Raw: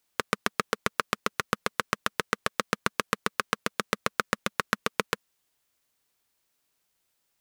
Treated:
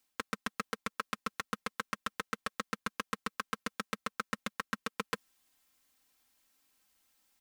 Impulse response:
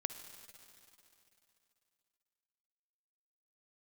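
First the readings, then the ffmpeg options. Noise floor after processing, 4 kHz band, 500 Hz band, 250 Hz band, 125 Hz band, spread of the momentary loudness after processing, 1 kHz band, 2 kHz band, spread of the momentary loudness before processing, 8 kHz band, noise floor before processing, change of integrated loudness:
under -85 dBFS, -9.0 dB, -11.5 dB, -6.0 dB, -9.5 dB, 1 LU, -8.5 dB, -9.0 dB, 2 LU, -9.5 dB, -76 dBFS, -9.0 dB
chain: -af "equalizer=f=530:w=5.8:g=-6.5,aecho=1:1:3.8:0.74,areverse,acompressor=threshold=-34dB:ratio=6,areverse,volume=1dB"

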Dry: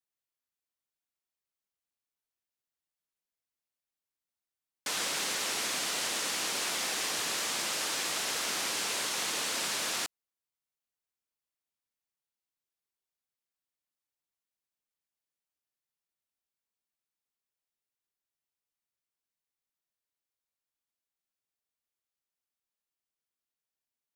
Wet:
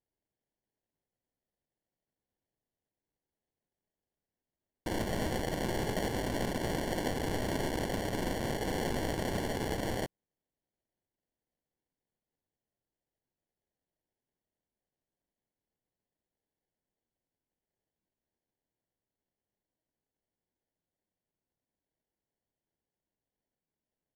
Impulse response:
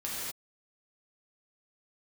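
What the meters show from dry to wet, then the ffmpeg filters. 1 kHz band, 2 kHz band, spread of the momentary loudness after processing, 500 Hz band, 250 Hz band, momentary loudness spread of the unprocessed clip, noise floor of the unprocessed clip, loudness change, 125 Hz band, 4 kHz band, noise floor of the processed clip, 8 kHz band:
0.0 dB, -5.5 dB, 2 LU, +8.0 dB, +12.0 dB, 1 LU, under -85 dBFS, -4.0 dB, +19.0 dB, -11.0 dB, under -85 dBFS, -14.0 dB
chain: -af "acrusher=samples=35:mix=1:aa=0.000001,aresample=32000,aresample=44100,aeval=exprs='0.106*(cos(1*acos(clip(val(0)/0.106,-1,1)))-cos(1*PI/2))+0.00299*(cos(7*acos(clip(val(0)/0.106,-1,1)))-cos(7*PI/2))+0.00473*(cos(8*acos(clip(val(0)/0.106,-1,1)))-cos(8*PI/2))':c=same"

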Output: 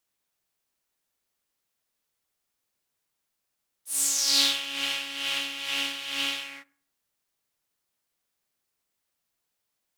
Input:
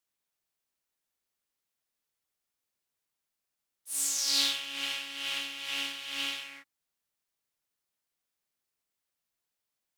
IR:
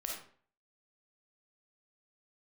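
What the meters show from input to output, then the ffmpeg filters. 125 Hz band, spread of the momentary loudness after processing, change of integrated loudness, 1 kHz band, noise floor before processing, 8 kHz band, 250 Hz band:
n/a, 9 LU, +5.0 dB, +5.5 dB, under -85 dBFS, +5.0 dB, +6.5 dB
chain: -filter_complex "[0:a]asplit=2[a][b];[b]lowpass=1.6k[c];[1:a]atrim=start_sample=2205,asetrate=40131,aresample=44100[d];[c][d]afir=irnorm=-1:irlink=0,volume=-16.5dB[e];[a][e]amix=inputs=2:normalize=0,volume=5dB"

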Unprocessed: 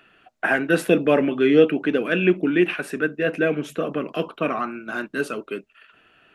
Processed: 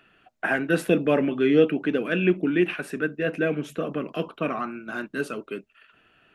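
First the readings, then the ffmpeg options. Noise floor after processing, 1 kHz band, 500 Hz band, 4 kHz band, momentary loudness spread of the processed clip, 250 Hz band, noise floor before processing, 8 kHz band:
-62 dBFS, -4.0 dB, -3.5 dB, -4.0 dB, 11 LU, -2.5 dB, -59 dBFS, n/a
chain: -af "bass=f=250:g=4,treble=f=4k:g=0,volume=-4dB"

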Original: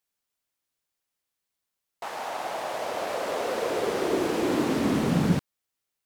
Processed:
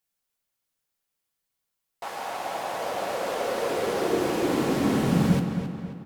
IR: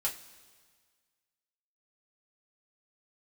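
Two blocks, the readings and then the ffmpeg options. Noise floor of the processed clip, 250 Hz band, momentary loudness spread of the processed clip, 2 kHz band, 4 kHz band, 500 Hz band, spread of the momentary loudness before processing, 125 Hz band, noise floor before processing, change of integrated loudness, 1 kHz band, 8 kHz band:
-82 dBFS, +1.5 dB, 11 LU, +0.5 dB, +0.5 dB, +1.0 dB, 9 LU, +2.5 dB, -84 dBFS, +1.0 dB, +1.0 dB, +1.0 dB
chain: -filter_complex "[0:a]asplit=2[a][b];[b]adelay=268,lowpass=f=4.2k:p=1,volume=-8dB,asplit=2[c][d];[d]adelay=268,lowpass=f=4.2k:p=1,volume=0.48,asplit=2[e][f];[f]adelay=268,lowpass=f=4.2k:p=1,volume=0.48,asplit=2[g][h];[h]adelay=268,lowpass=f=4.2k:p=1,volume=0.48,asplit=2[i][j];[j]adelay=268,lowpass=f=4.2k:p=1,volume=0.48,asplit=2[k][l];[l]adelay=268,lowpass=f=4.2k:p=1,volume=0.48[m];[a][c][e][g][i][k][m]amix=inputs=7:normalize=0,asplit=2[n][o];[1:a]atrim=start_sample=2205,lowshelf=f=250:g=8.5,highshelf=f=7.6k:g=7.5[p];[o][p]afir=irnorm=-1:irlink=0,volume=-7.5dB[q];[n][q]amix=inputs=2:normalize=0,volume=-3.5dB"

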